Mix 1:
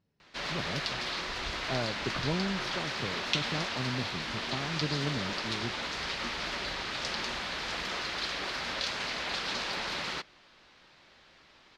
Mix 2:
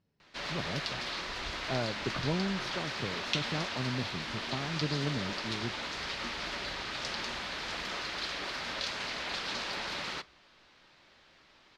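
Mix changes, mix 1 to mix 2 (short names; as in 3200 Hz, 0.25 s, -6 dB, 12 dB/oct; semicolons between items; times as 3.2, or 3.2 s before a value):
background -4.0 dB; reverb: on, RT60 0.35 s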